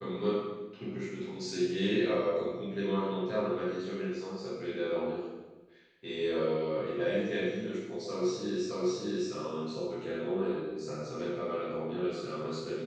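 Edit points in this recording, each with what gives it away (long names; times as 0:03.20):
0:08.71: the same again, the last 0.61 s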